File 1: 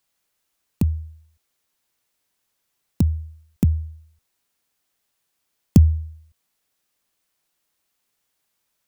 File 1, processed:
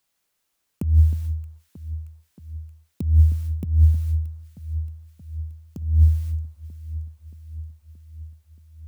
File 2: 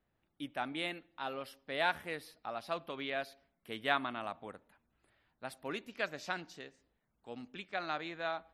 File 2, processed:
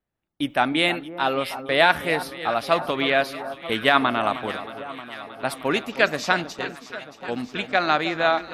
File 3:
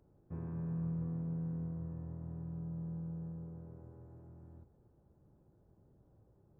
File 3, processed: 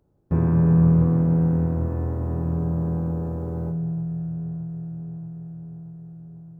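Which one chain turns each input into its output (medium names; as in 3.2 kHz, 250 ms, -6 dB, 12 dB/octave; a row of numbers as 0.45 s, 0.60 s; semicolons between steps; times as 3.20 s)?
gate with hold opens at -41 dBFS; compressor with a negative ratio -31 dBFS, ratio -1; echo whose repeats swap between lows and highs 313 ms, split 1.3 kHz, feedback 80%, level -12 dB; normalise loudness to -23 LUFS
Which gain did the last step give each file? +11.5 dB, +16.5 dB, +22.0 dB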